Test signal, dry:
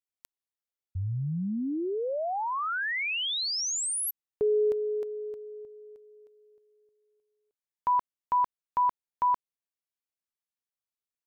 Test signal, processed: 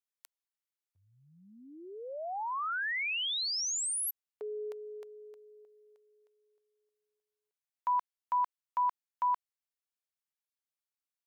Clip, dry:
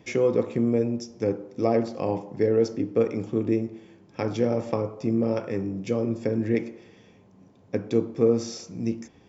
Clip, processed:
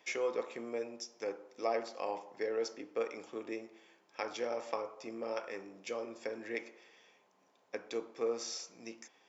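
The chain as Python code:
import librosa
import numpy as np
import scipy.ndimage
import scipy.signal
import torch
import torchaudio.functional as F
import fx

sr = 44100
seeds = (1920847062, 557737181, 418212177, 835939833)

y = scipy.signal.sosfilt(scipy.signal.butter(2, 790.0, 'highpass', fs=sr, output='sos'), x)
y = y * 10.0 ** (-3.0 / 20.0)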